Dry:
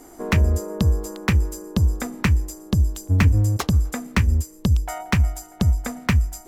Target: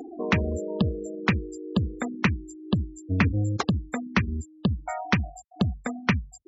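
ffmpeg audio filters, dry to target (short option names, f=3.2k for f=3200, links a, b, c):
-af "acompressor=mode=upward:threshold=-28dB:ratio=2.5,afftfilt=real='re*gte(hypot(re,im),0.0447)':imag='im*gte(hypot(re,im),0.0447)':win_size=1024:overlap=0.75,highpass=150,lowpass=5.8k"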